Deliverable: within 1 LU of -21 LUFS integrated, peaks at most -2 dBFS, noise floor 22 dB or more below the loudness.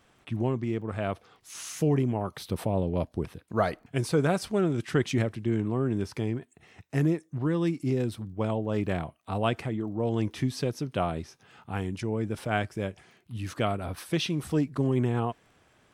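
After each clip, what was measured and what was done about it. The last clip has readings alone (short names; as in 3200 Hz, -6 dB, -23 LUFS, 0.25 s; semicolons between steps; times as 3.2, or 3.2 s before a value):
ticks 17/s; loudness -29.5 LUFS; peak -11.0 dBFS; loudness target -21.0 LUFS
-> de-click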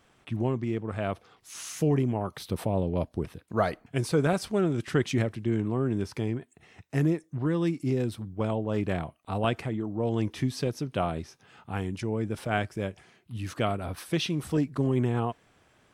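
ticks 0/s; loudness -29.5 LUFS; peak -11.0 dBFS; loudness target -21.0 LUFS
-> gain +8.5 dB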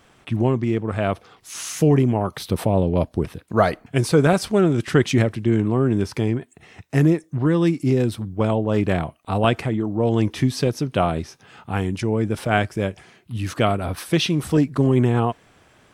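loudness -21.0 LUFS; peak -2.5 dBFS; noise floor -56 dBFS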